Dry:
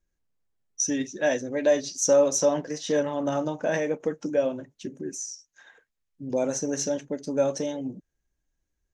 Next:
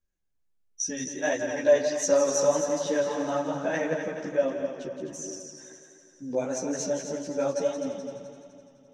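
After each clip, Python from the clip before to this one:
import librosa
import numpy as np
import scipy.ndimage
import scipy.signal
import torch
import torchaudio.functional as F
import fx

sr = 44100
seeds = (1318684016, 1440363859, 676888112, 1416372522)

y = fx.dynamic_eq(x, sr, hz=1300.0, q=0.82, threshold_db=-35.0, ratio=4.0, max_db=5)
y = fx.echo_heads(y, sr, ms=85, heads='second and third', feedback_pct=57, wet_db=-8)
y = fx.chorus_voices(y, sr, voices=2, hz=1.4, base_ms=13, depth_ms=3.0, mix_pct=55)
y = y * 10.0 ** (-1.5 / 20.0)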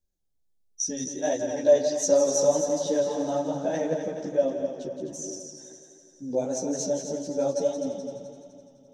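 y = fx.band_shelf(x, sr, hz=1700.0, db=-11.0, octaves=1.7)
y = y * 10.0 ** (1.5 / 20.0)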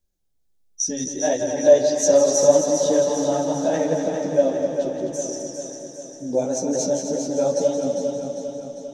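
y = fx.echo_feedback(x, sr, ms=400, feedback_pct=57, wet_db=-7)
y = y * 10.0 ** (5.0 / 20.0)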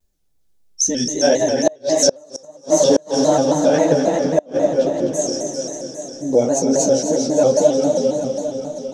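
y = fx.gate_flip(x, sr, shuts_db=-9.0, range_db=-33)
y = fx.vibrato_shape(y, sr, shape='square', rate_hz=3.7, depth_cents=100.0)
y = y * 10.0 ** (6.5 / 20.0)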